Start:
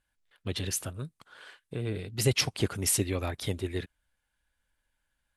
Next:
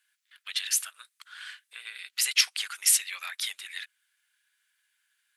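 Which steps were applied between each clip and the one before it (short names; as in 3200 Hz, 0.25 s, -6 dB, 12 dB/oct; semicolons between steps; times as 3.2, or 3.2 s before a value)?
in parallel at -2 dB: compressor, threshold -38 dBFS, peak gain reduction 17.5 dB; on the sum: HPF 1500 Hz 24 dB/oct; gain +4.5 dB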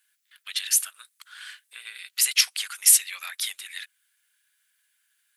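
high shelf 8500 Hz +11 dB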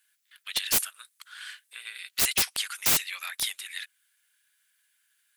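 wrapped overs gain 16 dB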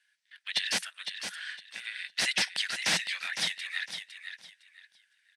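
speaker cabinet 180–7500 Hz, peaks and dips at 180 Hz +6 dB, 270 Hz -5 dB, 400 Hz -9 dB, 1200 Hz -8 dB, 1800 Hz +7 dB, 7100 Hz -9 dB; feedback echo 0.508 s, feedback 24%, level -8 dB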